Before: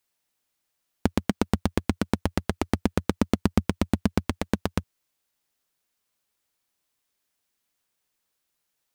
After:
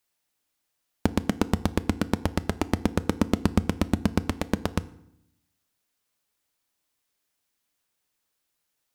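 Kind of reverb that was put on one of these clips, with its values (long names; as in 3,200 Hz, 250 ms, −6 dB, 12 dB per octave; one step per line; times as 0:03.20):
feedback delay network reverb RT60 0.75 s, low-frequency decay 1.35×, high-frequency decay 0.75×, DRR 14.5 dB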